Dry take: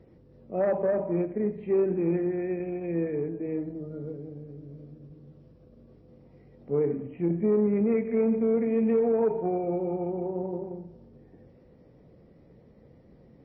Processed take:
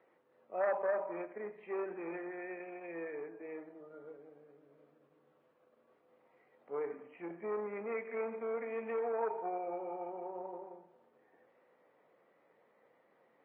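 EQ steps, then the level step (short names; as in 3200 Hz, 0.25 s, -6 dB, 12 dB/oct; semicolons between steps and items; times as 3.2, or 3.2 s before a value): Butterworth band-pass 2000 Hz, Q 0.7; air absorption 150 m; high shelf 2000 Hz -12 dB; +7.5 dB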